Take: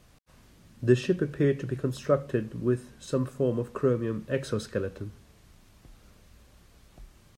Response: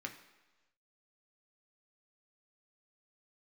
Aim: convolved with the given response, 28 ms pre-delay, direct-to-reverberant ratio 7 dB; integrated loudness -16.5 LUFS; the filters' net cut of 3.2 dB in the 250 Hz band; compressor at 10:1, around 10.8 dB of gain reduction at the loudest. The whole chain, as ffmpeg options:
-filter_complex "[0:a]equalizer=f=250:t=o:g=-4.5,acompressor=threshold=-29dB:ratio=10,asplit=2[a][b];[1:a]atrim=start_sample=2205,adelay=28[c];[b][c]afir=irnorm=-1:irlink=0,volume=-6.5dB[d];[a][d]amix=inputs=2:normalize=0,volume=19dB"

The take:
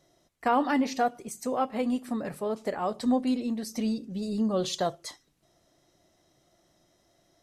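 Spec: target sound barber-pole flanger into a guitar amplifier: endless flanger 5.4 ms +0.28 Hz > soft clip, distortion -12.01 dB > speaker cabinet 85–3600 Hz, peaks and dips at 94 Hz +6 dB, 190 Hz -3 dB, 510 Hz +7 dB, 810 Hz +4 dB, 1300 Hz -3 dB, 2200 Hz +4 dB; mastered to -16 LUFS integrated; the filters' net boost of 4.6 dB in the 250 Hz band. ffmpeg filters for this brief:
-filter_complex "[0:a]equalizer=f=250:t=o:g=5.5,asplit=2[a][b];[b]adelay=5.4,afreqshift=0.28[c];[a][c]amix=inputs=2:normalize=1,asoftclip=threshold=-22dB,highpass=85,equalizer=f=94:t=q:w=4:g=6,equalizer=f=190:t=q:w=4:g=-3,equalizer=f=510:t=q:w=4:g=7,equalizer=f=810:t=q:w=4:g=4,equalizer=f=1.3k:t=q:w=4:g=-3,equalizer=f=2.2k:t=q:w=4:g=4,lowpass=f=3.6k:w=0.5412,lowpass=f=3.6k:w=1.3066,volume=14.5dB"

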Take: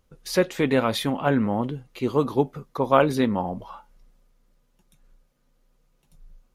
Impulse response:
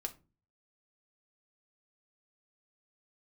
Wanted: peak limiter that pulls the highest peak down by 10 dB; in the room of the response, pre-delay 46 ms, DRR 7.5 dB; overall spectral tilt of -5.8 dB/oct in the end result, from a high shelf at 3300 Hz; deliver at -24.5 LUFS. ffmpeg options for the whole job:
-filter_complex "[0:a]highshelf=f=3.3k:g=-6,alimiter=limit=-13.5dB:level=0:latency=1,asplit=2[a][b];[1:a]atrim=start_sample=2205,adelay=46[c];[b][c]afir=irnorm=-1:irlink=0,volume=-6.5dB[d];[a][d]amix=inputs=2:normalize=0,volume=1.5dB"

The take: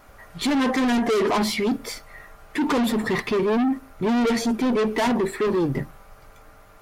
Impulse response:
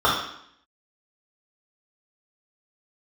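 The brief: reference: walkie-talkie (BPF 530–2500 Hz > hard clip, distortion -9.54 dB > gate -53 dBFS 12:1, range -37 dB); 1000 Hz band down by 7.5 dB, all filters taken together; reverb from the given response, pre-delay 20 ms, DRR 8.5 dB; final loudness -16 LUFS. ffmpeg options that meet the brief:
-filter_complex "[0:a]equalizer=f=1k:t=o:g=-9,asplit=2[a][b];[1:a]atrim=start_sample=2205,adelay=20[c];[b][c]afir=irnorm=-1:irlink=0,volume=-29.5dB[d];[a][d]amix=inputs=2:normalize=0,highpass=530,lowpass=2.5k,asoftclip=type=hard:threshold=-28.5dB,agate=range=-37dB:threshold=-53dB:ratio=12,volume=17.5dB"

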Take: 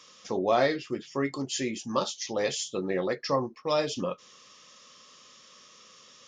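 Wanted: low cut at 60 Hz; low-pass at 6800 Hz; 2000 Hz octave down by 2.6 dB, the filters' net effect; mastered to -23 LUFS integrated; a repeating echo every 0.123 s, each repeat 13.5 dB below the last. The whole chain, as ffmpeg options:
-af "highpass=60,lowpass=6.8k,equalizer=f=2k:t=o:g=-3,aecho=1:1:123|246:0.211|0.0444,volume=7dB"

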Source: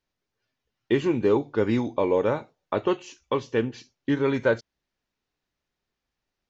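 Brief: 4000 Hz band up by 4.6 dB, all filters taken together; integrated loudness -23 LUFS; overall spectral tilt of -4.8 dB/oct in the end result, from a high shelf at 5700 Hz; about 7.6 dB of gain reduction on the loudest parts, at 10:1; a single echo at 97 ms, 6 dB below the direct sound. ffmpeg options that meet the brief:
-af "equalizer=f=4k:t=o:g=4,highshelf=f=5.7k:g=6,acompressor=threshold=-24dB:ratio=10,aecho=1:1:97:0.501,volume=7dB"

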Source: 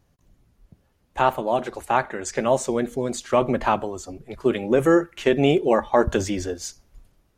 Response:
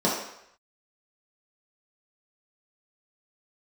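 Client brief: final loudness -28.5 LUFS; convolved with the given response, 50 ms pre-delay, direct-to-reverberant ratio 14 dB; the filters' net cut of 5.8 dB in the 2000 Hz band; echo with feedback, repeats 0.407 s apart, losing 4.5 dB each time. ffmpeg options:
-filter_complex "[0:a]equalizer=f=2k:t=o:g=-8,aecho=1:1:407|814|1221|1628|2035|2442|2849|3256|3663:0.596|0.357|0.214|0.129|0.0772|0.0463|0.0278|0.0167|0.01,asplit=2[a][b];[1:a]atrim=start_sample=2205,adelay=50[c];[b][c]afir=irnorm=-1:irlink=0,volume=-29dB[d];[a][d]amix=inputs=2:normalize=0,volume=-7dB"

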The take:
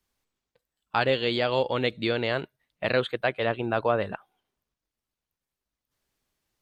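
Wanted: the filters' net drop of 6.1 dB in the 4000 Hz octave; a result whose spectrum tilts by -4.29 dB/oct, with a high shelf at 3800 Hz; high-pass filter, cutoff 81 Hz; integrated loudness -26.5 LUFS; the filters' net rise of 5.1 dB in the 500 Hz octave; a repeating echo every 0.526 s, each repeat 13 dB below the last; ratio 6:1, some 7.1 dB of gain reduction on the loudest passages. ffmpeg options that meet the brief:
-af "highpass=81,equalizer=f=500:t=o:g=6,highshelf=f=3.8k:g=-7.5,equalizer=f=4k:t=o:g=-4,acompressor=threshold=-22dB:ratio=6,aecho=1:1:526|1052|1578:0.224|0.0493|0.0108,volume=1.5dB"

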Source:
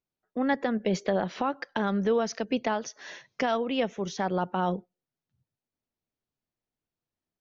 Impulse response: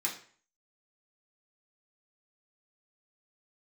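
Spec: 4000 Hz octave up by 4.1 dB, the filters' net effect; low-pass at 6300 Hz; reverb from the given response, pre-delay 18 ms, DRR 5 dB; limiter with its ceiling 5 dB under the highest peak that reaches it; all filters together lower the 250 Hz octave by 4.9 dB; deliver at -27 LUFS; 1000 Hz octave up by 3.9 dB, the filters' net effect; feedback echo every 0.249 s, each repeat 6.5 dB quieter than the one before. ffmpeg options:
-filter_complex "[0:a]lowpass=6.3k,equalizer=f=250:t=o:g=-6.5,equalizer=f=1k:t=o:g=5.5,equalizer=f=4k:t=o:g=6,alimiter=limit=-17.5dB:level=0:latency=1,aecho=1:1:249|498|747|996|1245|1494:0.473|0.222|0.105|0.0491|0.0231|0.0109,asplit=2[a][b];[1:a]atrim=start_sample=2205,adelay=18[c];[b][c]afir=irnorm=-1:irlink=0,volume=-9.5dB[d];[a][d]amix=inputs=2:normalize=0,volume=1.5dB"

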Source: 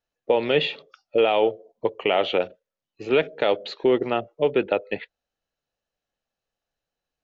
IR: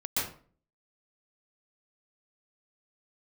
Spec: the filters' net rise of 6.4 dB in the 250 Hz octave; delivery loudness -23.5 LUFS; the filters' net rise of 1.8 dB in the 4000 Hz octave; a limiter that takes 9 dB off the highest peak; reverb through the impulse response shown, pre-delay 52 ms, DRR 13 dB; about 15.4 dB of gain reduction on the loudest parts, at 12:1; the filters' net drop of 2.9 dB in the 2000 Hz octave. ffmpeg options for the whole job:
-filter_complex "[0:a]equalizer=f=250:t=o:g=9,equalizer=f=2k:t=o:g=-6.5,equalizer=f=4k:t=o:g=5.5,acompressor=threshold=-27dB:ratio=12,alimiter=limit=-23.5dB:level=0:latency=1,asplit=2[a][b];[1:a]atrim=start_sample=2205,adelay=52[c];[b][c]afir=irnorm=-1:irlink=0,volume=-20dB[d];[a][d]amix=inputs=2:normalize=0,volume=12.5dB"

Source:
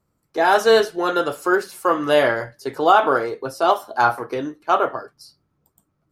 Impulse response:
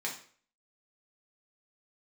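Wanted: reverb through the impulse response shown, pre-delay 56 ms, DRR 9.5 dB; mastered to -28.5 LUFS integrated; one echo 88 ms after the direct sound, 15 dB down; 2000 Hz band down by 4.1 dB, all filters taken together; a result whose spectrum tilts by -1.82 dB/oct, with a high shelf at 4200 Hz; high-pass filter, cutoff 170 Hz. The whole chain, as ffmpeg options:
-filter_complex "[0:a]highpass=170,equalizer=f=2k:t=o:g=-5.5,highshelf=f=4.2k:g=-4,aecho=1:1:88:0.178,asplit=2[a][b];[1:a]atrim=start_sample=2205,adelay=56[c];[b][c]afir=irnorm=-1:irlink=0,volume=-13.5dB[d];[a][d]amix=inputs=2:normalize=0,volume=-8.5dB"

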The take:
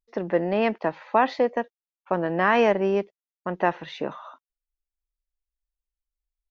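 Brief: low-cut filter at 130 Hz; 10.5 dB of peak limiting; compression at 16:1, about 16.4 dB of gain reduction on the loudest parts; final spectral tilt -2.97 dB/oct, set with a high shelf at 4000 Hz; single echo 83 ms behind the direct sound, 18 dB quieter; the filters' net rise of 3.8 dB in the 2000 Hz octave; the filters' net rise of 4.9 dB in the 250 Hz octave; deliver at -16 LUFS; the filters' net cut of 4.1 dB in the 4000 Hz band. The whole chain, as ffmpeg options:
-af "highpass=130,equalizer=f=250:t=o:g=7,equalizer=f=2k:t=o:g=7,highshelf=f=4k:g=-4.5,equalizer=f=4k:t=o:g=-7.5,acompressor=threshold=-29dB:ratio=16,alimiter=level_in=2.5dB:limit=-24dB:level=0:latency=1,volume=-2.5dB,aecho=1:1:83:0.126,volume=22dB"

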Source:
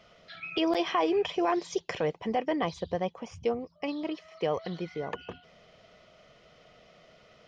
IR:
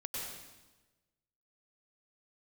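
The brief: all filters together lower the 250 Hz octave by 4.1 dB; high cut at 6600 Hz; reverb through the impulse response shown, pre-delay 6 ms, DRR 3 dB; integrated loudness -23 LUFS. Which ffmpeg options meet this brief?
-filter_complex "[0:a]lowpass=6.6k,equalizer=f=250:t=o:g=-6.5,asplit=2[a][b];[1:a]atrim=start_sample=2205,adelay=6[c];[b][c]afir=irnorm=-1:irlink=0,volume=-4dB[d];[a][d]amix=inputs=2:normalize=0,volume=7.5dB"

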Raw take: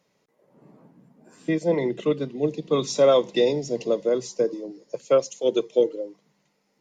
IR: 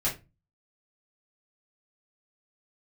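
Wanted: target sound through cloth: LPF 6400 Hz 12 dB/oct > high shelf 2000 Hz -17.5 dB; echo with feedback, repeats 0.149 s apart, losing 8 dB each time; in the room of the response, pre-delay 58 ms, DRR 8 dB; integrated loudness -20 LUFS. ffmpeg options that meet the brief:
-filter_complex "[0:a]aecho=1:1:149|298|447|596|745:0.398|0.159|0.0637|0.0255|0.0102,asplit=2[a][b];[1:a]atrim=start_sample=2205,adelay=58[c];[b][c]afir=irnorm=-1:irlink=0,volume=-16dB[d];[a][d]amix=inputs=2:normalize=0,lowpass=6.4k,highshelf=f=2k:g=-17.5,volume=4dB"

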